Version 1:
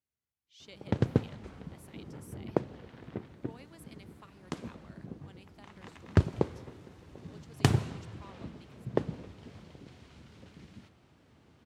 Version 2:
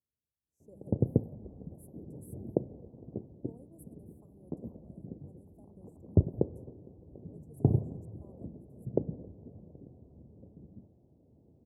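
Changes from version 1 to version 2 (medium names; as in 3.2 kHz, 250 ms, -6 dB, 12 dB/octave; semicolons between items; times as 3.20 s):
background: add low-pass 2 kHz 24 dB/octave; master: add inverse Chebyshev band-stop 1.7–3.9 kHz, stop band 70 dB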